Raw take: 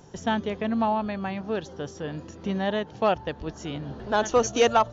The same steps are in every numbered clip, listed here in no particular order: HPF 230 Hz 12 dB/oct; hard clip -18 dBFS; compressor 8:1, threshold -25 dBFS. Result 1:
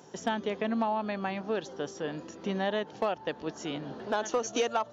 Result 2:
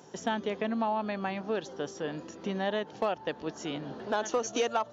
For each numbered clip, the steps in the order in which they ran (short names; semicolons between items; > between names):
HPF > compressor > hard clip; compressor > HPF > hard clip